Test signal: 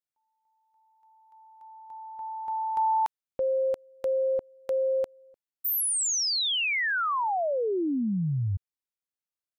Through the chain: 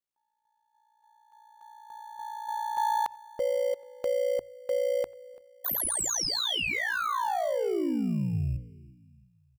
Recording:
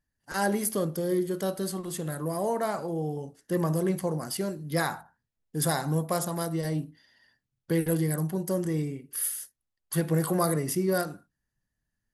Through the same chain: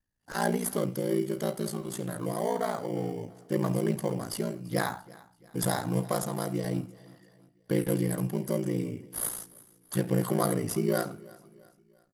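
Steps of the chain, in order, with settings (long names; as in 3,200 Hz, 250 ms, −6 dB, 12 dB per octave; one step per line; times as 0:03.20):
in parallel at −11.5 dB: decimation without filtering 17×
on the sum: far-end echo of a speakerphone 90 ms, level −24 dB
ring modulation 29 Hz
mains-hum notches 60/120 Hz
on a send: repeating echo 338 ms, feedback 45%, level −22 dB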